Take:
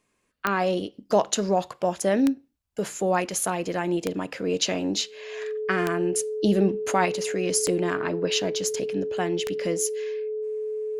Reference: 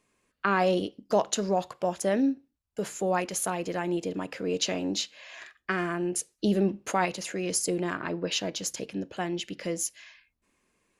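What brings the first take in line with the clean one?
click removal
notch filter 430 Hz, Q 30
level 0 dB, from 0:00.94 −3.5 dB

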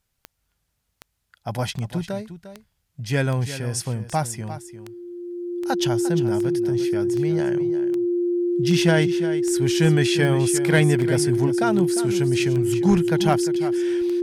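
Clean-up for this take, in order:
clipped peaks rebuilt −9 dBFS
click removal
notch filter 350 Hz, Q 30
echo removal 351 ms −12.5 dB

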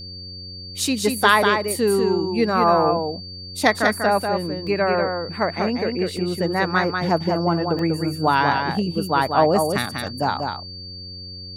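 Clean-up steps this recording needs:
hum removal 90.5 Hz, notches 6
notch filter 4,600 Hz, Q 30
repair the gap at 0:04.67/0:06.17/0:07.79/0:10.07, 1.6 ms
echo removal 193 ms −5 dB

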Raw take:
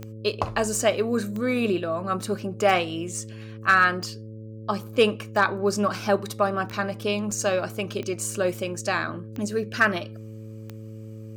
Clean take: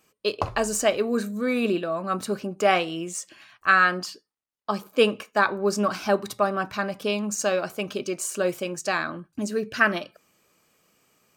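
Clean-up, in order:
clipped peaks rebuilt −9 dBFS
click removal
hum removal 109.5 Hz, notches 5
repair the gap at 0:07.31, 4.7 ms

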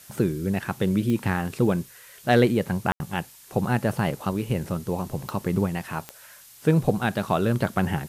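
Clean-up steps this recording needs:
clipped peaks rebuilt −8.5 dBFS
click removal
ambience match 0:02.92–0:03.00
noise reduction from a noise print 20 dB

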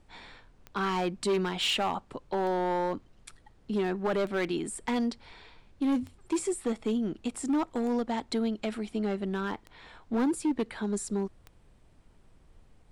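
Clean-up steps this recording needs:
clipped peaks rebuilt −23 dBFS
click removal
downward expander −50 dBFS, range −21 dB

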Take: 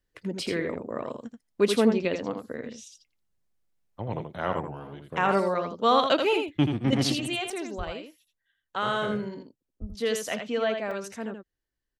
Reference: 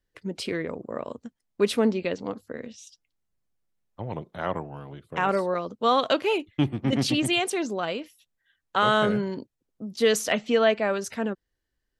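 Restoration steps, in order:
high-pass at the plosives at 0:07.77/0:09.80
repair the gap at 0:07.50/0:09.79/0:10.91, 3.7 ms
echo removal 82 ms −6.5 dB
level 0 dB, from 0:07.12 +7 dB

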